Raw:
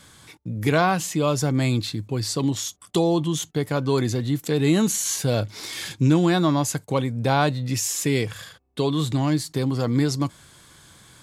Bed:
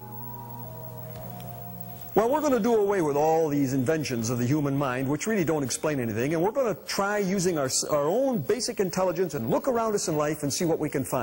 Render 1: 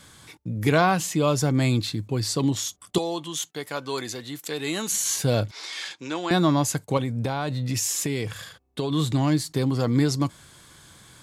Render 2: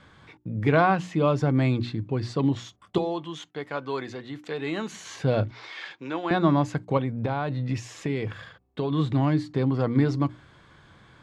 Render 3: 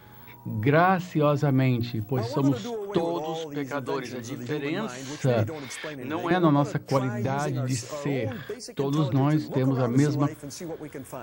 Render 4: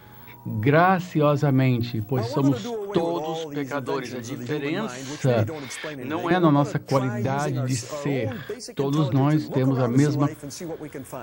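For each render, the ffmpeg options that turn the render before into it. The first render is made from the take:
-filter_complex "[0:a]asettb=1/sr,asplit=3[a][b][c];[a]atrim=end=2.984[d];[b]atrim=start=2.98:end=4.92,asetpts=PTS-STARTPTS,afade=t=in:d=0.004:c=qsin,afade=t=out:st=1.936:d=0.004:c=qsin,highpass=f=990:p=1[e];[c]atrim=start=4.916[f];[d][e]acrossfade=d=0.004:c1=hsin:c2=qsin[g];[g][f]acrossfade=d=0.004:c1=qsin:c2=hsin,asettb=1/sr,asplit=3[h][i][j];[h]atrim=end=5.514[k];[i]atrim=start=5.51:end=6.31,asetpts=PTS-STARTPTS,afade=t=in:d=0.004:c=qsin,afade=t=out:st=0.796:d=0.004:c=qsin,highpass=640,lowpass=5.9k[l];[j]atrim=start=6.306[m];[k][l]acrossfade=d=0.004:c1=hsin:c2=qsin[n];[n][m]acrossfade=d=0.004:c1=qsin:c2=hsin,asettb=1/sr,asplit=3[o][p][q];[o]atrim=end=6.974[r];[p]atrim=start=6.97:end=8.92,asetpts=PTS-STARTPTS,afade=t=in:d=0.004:c=qsin,afade=t=out:st=1.946:d=0.004:c=qsin,acompressor=threshold=-21dB:ratio=10:attack=3.2:release=140:knee=1:detection=peak[s];[q]atrim=start=8.916[t];[r][s]acrossfade=d=0.004:c1=hsin:c2=qsin[u];[u][t]acrossfade=d=0.004:c1=qsin:c2=hsin"
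-af "lowpass=2.3k,bandreject=f=60:t=h:w=6,bandreject=f=120:t=h:w=6,bandreject=f=180:t=h:w=6,bandreject=f=240:t=h:w=6,bandreject=f=300:t=h:w=6,bandreject=f=360:t=h:w=6"
-filter_complex "[1:a]volume=-10.5dB[a];[0:a][a]amix=inputs=2:normalize=0"
-af "volume=2.5dB"

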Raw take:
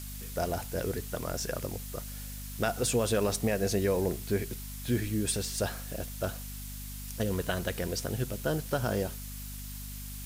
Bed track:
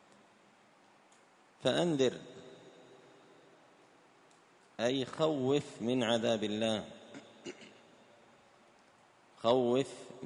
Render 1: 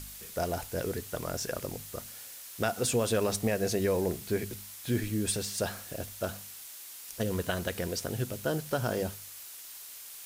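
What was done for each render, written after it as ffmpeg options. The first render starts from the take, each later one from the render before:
-af "bandreject=f=50:t=h:w=4,bandreject=f=100:t=h:w=4,bandreject=f=150:t=h:w=4,bandreject=f=200:t=h:w=4,bandreject=f=250:t=h:w=4"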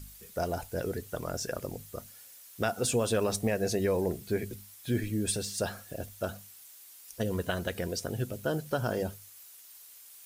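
-af "afftdn=nr=9:nf=-46"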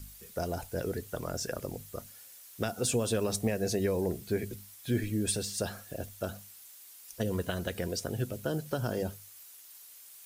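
-filter_complex "[0:a]acrossover=split=430|3000[a][b][c];[b]acompressor=threshold=-34dB:ratio=6[d];[a][d][c]amix=inputs=3:normalize=0"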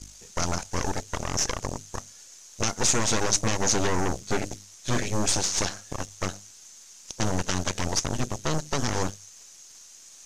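-af "aeval=exprs='0.133*(cos(1*acos(clip(val(0)/0.133,-1,1)))-cos(1*PI/2))+0.0531*(cos(8*acos(clip(val(0)/0.133,-1,1)))-cos(8*PI/2))':c=same,lowpass=f=6.4k:t=q:w=5.8"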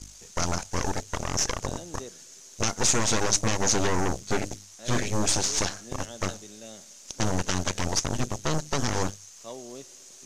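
-filter_complex "[1:a]volume=-12.5dB[a];[0:a][a]amix=inputs=2:normalize=0"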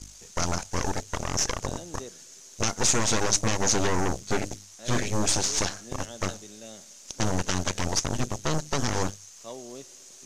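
-af anull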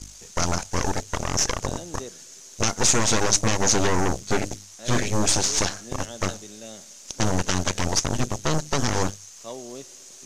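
-af "volume=3.5dB"

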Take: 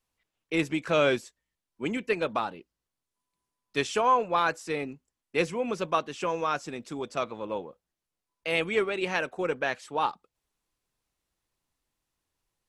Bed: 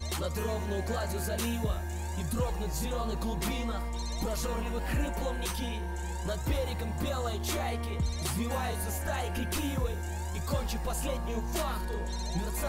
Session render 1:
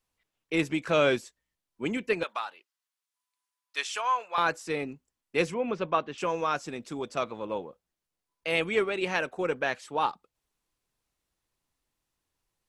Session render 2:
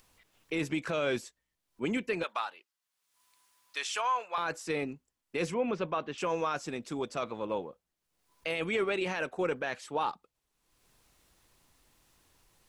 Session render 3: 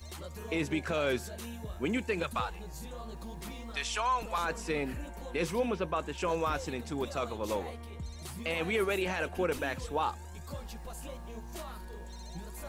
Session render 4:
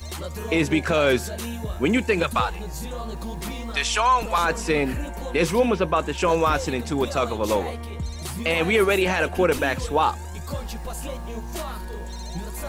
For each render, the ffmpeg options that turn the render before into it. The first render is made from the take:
-filter_complex "[0:a]asettb=1/sr,asplit=3[a][b][c];[a]atrim=end=2.234[d];[b]atrim=start=2.23:end=4.38,asetpts=PTS-STARTPTS,afade=t=in:d=0.004:c=qsin,afade=t=out:st=2.146:d=0.004:c=qsin,highpass=1.1k[e];[c]atrim=start=4.376[f];[d][e]acrossfade=d=0.004:c1=hsin:c2=qsin[g];[g][f]acrossfade=d=0.004:c1=qsin:c2=hsin,asettb=1/sr,asplit=3[h][i][j];[h]atrim=end=5.544[k];[i]atrim=start=5.54:end=6.18,asetpts=PTS-STARTPTS,afade=t=in:d=0.004:c=qsin,afade=t=out:st=0.636:d=0.004:c=qsin,lowpass=3.2k[l];[j]atrim=start=6.176[m];[k][l]acrossfade=d=0.004:c1=hsin:c2=qsin[n];[n][m]acrossfade=d=0.004:c1=qsin:c2=hsin"
-af "alimiter=limit=-21.5dB:level=0:latency=1:release=21,acompressor=mode=upward:threshold=-52dB:ratio=2.5"
-filter_complex "[1:a]volume=-10.5dB[a];[0:a][a]amix=inputs=2:normalize=0"
-af "volume=11dB"

